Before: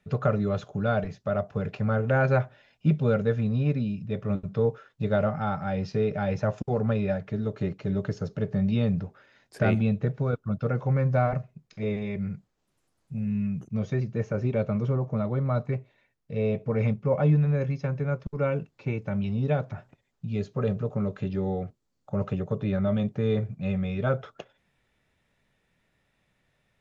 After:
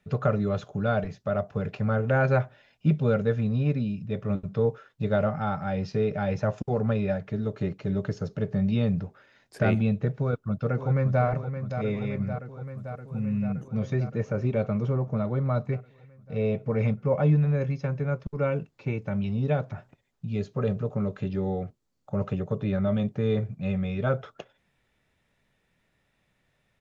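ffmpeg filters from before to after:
ffmpeg -i in.wav -filter_complex "[0:a]asplit=2[link_01][link_02];[link_02]afade=type=in:start_time=10.15:duration=0.01,afade=type=out:start_time=11.24:duration=0.01,aecho=0:1:570|1140|1710|2280|2850|3420|3990|4560|5130|5700|6270|6840:0.354813|0.26611|0.199583|0.149687|0.112265|0.0841989|0.0631492|0.0473619|0.0355214|0.0266411|0.0199808|0.0149856[link_03];[link_01][link_03]amix=inputs=2:normalize=0" out.wav

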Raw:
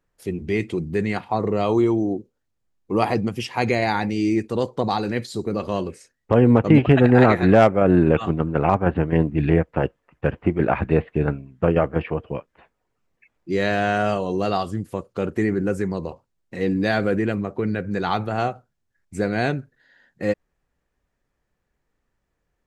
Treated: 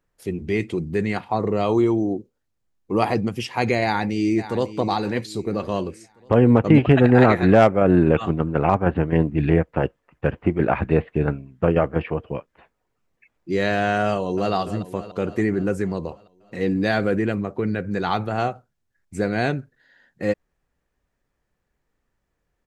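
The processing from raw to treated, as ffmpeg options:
ffmpeg -i in.wav -filter_complex "[0:a]asplit=2[link_01][link_02];[link_02]afade=type=in:start_time=3.83:duration=0.01,afade=type=out:start_time=4.68:duration=0.01,aecho=0:1:550|1100|1650|2200:0.211349|0.0845396|0.0338158|0.0135263[link_03];[link_01][link_03]amix=inputs=2:normalize=0,asplit=2[link_04][link_05];[link_05]afade=type=in:start_time=14.08:duration=0.01,afade=type=out:start_time=14.53:duration=0.01,aecho=0:1:290|580|870|1160|1450|1740|2030|2320:0.251189|0.163273|0.106127|0.0689827|0.0448387|0.0291452|0.0189444|0.0123138[link_06];[link_04][link_06]amix=inputs=2:normalize=0" out.wav

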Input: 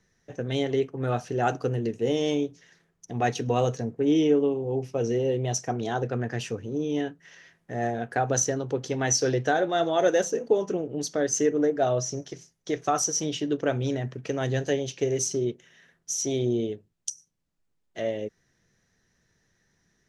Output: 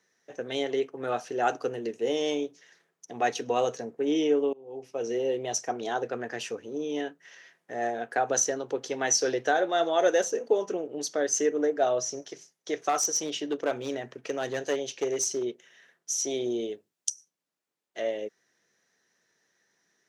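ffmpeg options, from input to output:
ffmpeg -i in.wav -filter_complex "[0:a]asettb=1/sr,asplit=3[link_01][link_02][link_03];[link_01]atrim=end=12.894[link_04];[link_02]atrim=start=12.89:end=15.43,asetpts=PTS-STARTPTS,afade=type=in:duration=0.004:curve=qsin,afade=type=out:start_time=2.536:duration=0.004:curve=qsin,aeval=exprs='clip(val(0),-1,0.0944)':channel_layout=same[link_05];[link_03]atrim=start=15.426[link_06];[link_04][link_05]acrossfade=duration=0.004:curve1=hsin:curve2=qsin[link_07];[link_07][link_06]acrossfade=duration=0.004:curve1=qsin:curve2=hsin,asettb=1/sr,asplit=3[link_08][link_09][link_10];[link_08]atrim=end=16.454[link_11];[link_09]atrim=start=16.45:end=17.09,asetpts=PTS-STARTPTS,afade=type=in:duration=0.004:curve=qsin,afade=type=out:start_time=0.636:duration=0.004:curve=qsin,highshelf=frequency=4600:gain=5[link_12];[link_10]atrim=start=17.086[link_13];[link_11][link_12]acrossfade=duration=0.004:curve1=hsin:curve2=qsin[link_14];[link_14][link_13]acrossfade=duration=0.004:curve1=qsin:curve2=hsin,asplit=2[link_15][link_16];[link_15]atrim=end=4.53,asetpts=PTS-STARTPTS,afade=type=out:start_time=4.526:duration=0.004:curve=hsin:silence=0.0668344[link_17];[link_16]atrim=start=4.53,asetpts=PTS-STARTPTS,afade=type=in:duration=0.66:silence=0.0668344[link_18];[link_17][link_18]concat=n=2:v=0:a=1,highpass=370" out.wav

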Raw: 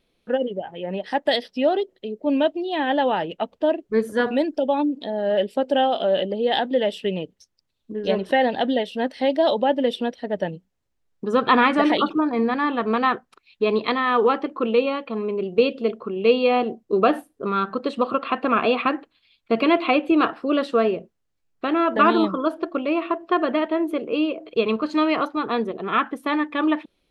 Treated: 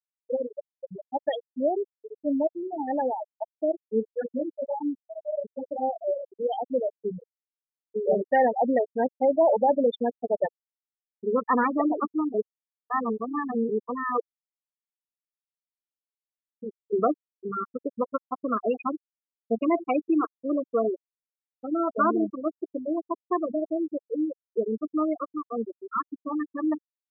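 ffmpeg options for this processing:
ffmpeg -i in.wav -filter_complex "[0:a]asplit=3[link_01][link_02][link_03];[link_01]afade=type=out:start_time=4.07:duration=0.02[link_04];[link_02]flanger=delay=15.5:depth=3.6:speed=2.3,afade=type=in:start_time=4.07:duration=0.02,afade=type=out:start_time=6.42:duration=0.02[link_05];[link_03]afade=type=in:start_time=6.42:duration=0.02[link_06];[link_04][link_05][link_06]amix=inputs=3:normalize=0,asettb=1/sr,asplit=3[link_07][link_08][link_09];[link_07]atrim=end=7.954[link_10];[link_08]atrim=start=7.95:end=11.34,asetpts=PTS-STARTPTS,afade=type=in:duration=0.004:curve=qsin,afade=type=out:start_time=3.386:duration=0.004:curve=qsin,asplit=2[link_11][link_12];[link_12]highpass=frequency=720:poles=1,volume=17dB,asoftclip=type=tanh:threshold=-6dB[link_13];[link_11][link_13]amix=inputs=2:normalize=0,lowpass=frequency=2500:poles=1,volume=-6dB[link_14];[link_09]atrim=start=11.336[link_15];[link_10][link_14]acrossfade=duration=0.004:curve1=hsin:curve2=qsin[link_16];[link_16][link_15]acrossfade=duration=0.004:curve1=qsin:curve2=hsin,asplit=2[link_17][link_18];[link_18]afade=type=in:start_time=20.86:duration=0.01,afade=type=out:start_time=21.68:duration=0.01,aecho=0:1:440|880|1320|1760|2200|2640|3080|3520|3960|4400:0.149624|0.112218|0.0841633|0.0631224|0.0473418|0.0355064|0.0266298|0.0199723|0.0149793|0.0112344[link_19];[link_17][link_19]amix=inputs=2:normalize=0,asplit=5[link_20][link_21][link_22][link_23][link_24];[link_20]atrim=end=12.342[link_25];[link_21]atrim=start=12.338:end=13.692,asetpts=PTS-STARTPTS,areverse[link_26];[link_22]atrim=start=13.688:end=14.2,asetpts=PTS-STARTPTS,afade=type=out:start_time=0.508:duration=0.004:curve=hsin[link_27];[link_23]atrim=start=14.2:end=16.62,asetpts=PTS-STARTPTS,volume=0[link_28];[link_24]atrim=start=16.62,asetpts=PTS-STARTPTS,afade=type=in:duration=0.004:curve=hsin[link_29];[link_25][link_26]acrossfade=duration=0.004:curve1=hsin:curve2=hsin[link_30];[link_27][link_28][link_29]concat=n=3:v=0:a=1[link_31];[link_30][link_31]acrossfade=duration=0.004:curve1=hsin:curve2=hsin,afftfilt=real='re*gte(hypot(re,im),0.398)':imag='im*gte(hypot(re,im),0.398)':win_size=1024:overlap=0.75,highshelf=frequency=2700:gain=-8,volume=-4.5dB" out.wav

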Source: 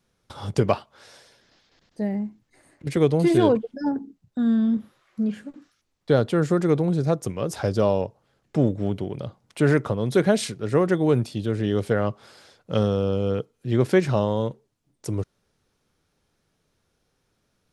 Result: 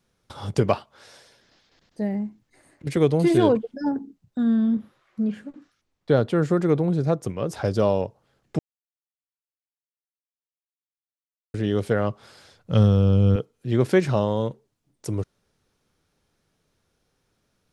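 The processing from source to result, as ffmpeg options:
ffmpeg -i in.wav -filter_complex "[0:a]asettb=1/sr,asplit=3[link_01][link_02][link_03];[link_01]atrim=end=4.434[link_04];[link_02]atrim=start=4.43:end=7.65,asetpts=PTS-STARTPTS,afade=type=in:duration=0.004:curve=qsin,afade=type=out:start_time=3.216:duration=0.004:curve=qsin,highshelf=frequency=4200:gain=-6.5[link_05];[link_03]atrim=start=7.646[link_06];[link_04][link_05]acrossfade=duration=0.004:curve1=hsin:curve2=qsin[link_07];[link_07][link_06]acrossfade=duration=0.004:curve1=qsin:curve2=hsin,asettb=1/sr,asplit=3[link_08][link_09][link_10];[link_08]atrim=end=12.084[link_11];[link_09]atrim=start=12.08:end=13.36,asetpts=PTS-STARTPTS,afade=type=in:duration=0.004:curve=qsin,afade=type=out:start_time=1.276:duration=0.004:curve=qsin,asubboost=boost=10.5:cutoff=200[link_12];[link_10]atrim=start=13.356[link_13];[link_11][link_12]acrossfade=duration=0.004:curve1=hsin:curve2=qsin[link_14];[link_14][link_13]acrossfade=duration=0.004:curve1=qsin:curve2=hsin,asplit=3[link_15][link_16][link_17];[link_15]atrim=end=8.59,asetpts=PTS-STARTPTS,afade=type=out:start_time=8.586:duration=0.004:curve=hsin[link_18];[link_16]atrim=start=8.59:end=11.54,asetpts=PTS-STARTPTS,volume=0[link_19];[link_17]atrim=start=11.54,asetpts=PTS-STARTPTS,afade=type=in:duration=0.004:curve=hsin[link_20];[link_18][link_19][link_20]concat=n=3:v=0:a=1" out.wav

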